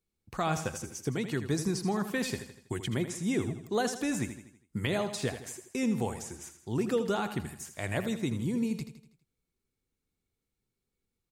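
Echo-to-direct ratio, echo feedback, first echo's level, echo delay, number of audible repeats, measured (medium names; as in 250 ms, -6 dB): -9.5 dB, 48%, -10.5 dB, 81 ms, 4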